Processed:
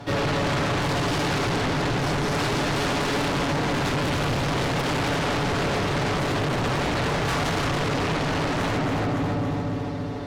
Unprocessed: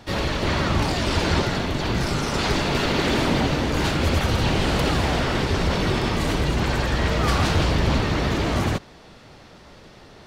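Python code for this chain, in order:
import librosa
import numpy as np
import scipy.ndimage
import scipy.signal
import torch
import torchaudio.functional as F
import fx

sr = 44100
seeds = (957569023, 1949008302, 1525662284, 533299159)

p1 = scipy.signal.sosfilt(scipy.signal.butter(2, 59.0, 'highpass', fs=sr, output='sos'), x)
p2 = fx.high_shelf(p1, sr, hz=2100.0, db=-9.0)
p3 = p2 + 0.9 * np.pad(p2, (int(7.0 * sr / 1000.0), 0))[:len(p2)]
p4 = p3 + fx.echo_feedback(p3, sr, ms=280, feedback_pct=55, wet_db=-5.5, dry=0)
p5 = 10.0 ** (-19.5 / 20.0) * np.tanh(p4 / 10.0 ** (-19.5 / 20.0))
p6 = fx.echo_filtered(p5, sr, ms=345, feedback_pct=61, hz=1100.0, wet_db=-7.0)
p7 = fx.fold_sine(p6, sr, drive_db=19, ceiling_db=-6.0)
p8 = p6 + F.gain(torch.from_numpy(p7), -9.5).numpy()
y = F.gain(torch.from_numpy(p8), -8.5).numpy()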